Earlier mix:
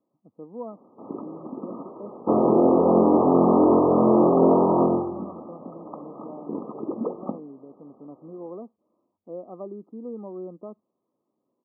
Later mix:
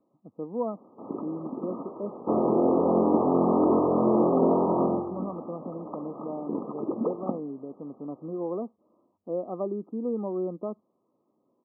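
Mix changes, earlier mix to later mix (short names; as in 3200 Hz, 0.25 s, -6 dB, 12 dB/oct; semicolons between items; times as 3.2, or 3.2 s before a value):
speech +6.0 dB; second sound -5.0 dB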